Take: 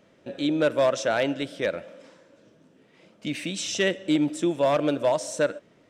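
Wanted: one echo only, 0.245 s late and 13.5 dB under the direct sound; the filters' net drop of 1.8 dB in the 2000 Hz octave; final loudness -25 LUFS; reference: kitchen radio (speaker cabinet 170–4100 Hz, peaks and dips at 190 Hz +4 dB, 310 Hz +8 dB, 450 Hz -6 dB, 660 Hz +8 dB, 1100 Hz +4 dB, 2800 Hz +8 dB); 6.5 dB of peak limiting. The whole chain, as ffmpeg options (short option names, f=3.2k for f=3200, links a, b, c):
-af "equalizer=f=2k:t=o:g=-6,alimiter=limit=-20dB:level=0:latency=1,highpass=170,equalizer=f=190:t=q:w=4:g=4,equalizer=f=310:t=q:w=4:g=8,equalizer=f=450:t=q:w=4:g=-6,equalizer=f=660:t=q:w=4:g=8,equalizer=f=1.1k:t=q:w=4:g=4,equalizer=f=2.8k:t=q:w=4:g=8,lowpass=f=4.1k:w=0.5412,lowpass=f=4.1k:w=1.3066,aecho=1:1:245:0.211"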